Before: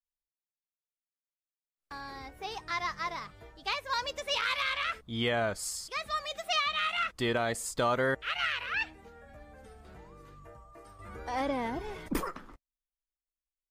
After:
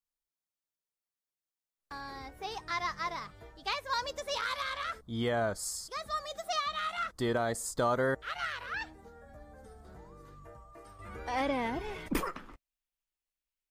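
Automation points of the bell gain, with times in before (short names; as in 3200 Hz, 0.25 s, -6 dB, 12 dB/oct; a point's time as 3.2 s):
bell 2600 Hz 0.72 oct
3.71 s -3 dB
4.57 s -13.5 dB
9.94 s -13.5 dB
10.38 s -5 dB
11.32 s +5 dB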